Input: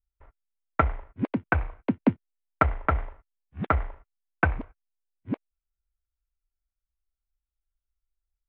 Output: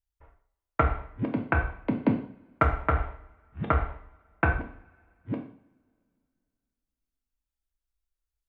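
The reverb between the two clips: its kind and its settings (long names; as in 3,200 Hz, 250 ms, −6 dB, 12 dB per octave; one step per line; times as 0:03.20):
coupled-rooms reverb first 0.5 s, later 2.5 s, from −28 dB, DRR 2 dB
level −2.5 dB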